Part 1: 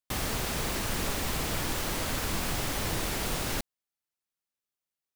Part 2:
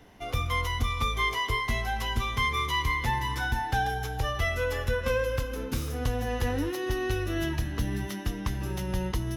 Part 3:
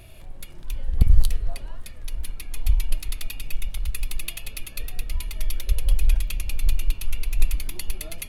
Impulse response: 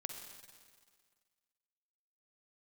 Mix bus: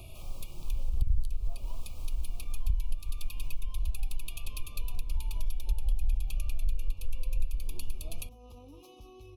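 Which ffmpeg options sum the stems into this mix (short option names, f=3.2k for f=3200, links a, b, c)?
-filter_complex "[0:a]highpass=570,acrusher=bits=5:mix=0:aa=0.000001,adelay=50,volume=-15.5dB[a];[1:a]adelay=2100,volume=-10dB[b];[2:a]volume=0.5dB[c];[a][b]amix=inputs=2:normalize=0,flanger=delay=1.5:depth=2.8:regen=-51:speed=0.29:shape=sinusoidal,alimiter=level_in=16.5dB:limit=-24dB:level=0:latency=1:release=39,volume=-16.5dB,volume=0dB[d];[c][d]amix=inputs=2:normalize=0,acrossover=split=130[e][f];[f]acompressor=threshold=-55dB:ratio=1.5[g];[e][g]amix=inputs=2:normalize=0,asuperstop=centerf=1700:order=20:qfactor=1.7,acompressor=threshold=-25dB:ratio=3"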